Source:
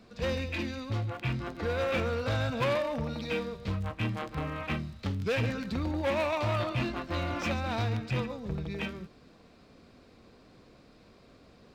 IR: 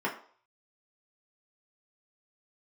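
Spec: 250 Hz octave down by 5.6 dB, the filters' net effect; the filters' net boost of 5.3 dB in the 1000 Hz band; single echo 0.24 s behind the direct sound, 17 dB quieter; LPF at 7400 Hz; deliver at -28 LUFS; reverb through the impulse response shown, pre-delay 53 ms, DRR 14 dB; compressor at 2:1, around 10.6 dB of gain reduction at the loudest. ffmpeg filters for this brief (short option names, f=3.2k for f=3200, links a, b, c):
-filter_complex "[0:a]lowpass=7.4k,equalizer=f=250:t=o:g=-8,equalizer=f=1k:t=o:g=7,acompressor=threshold=-42dB:ratio=2,aecho=1:1:240:0.141,asplit=2[a][b];[1:a]atrim=start_sample=2205,adelay=53[c];[b][c]afir=irnorm=-1:irlink=0,volume=-23dB[d];[a][d]amix=inputs=2:normalize=0,volume=11.5dB"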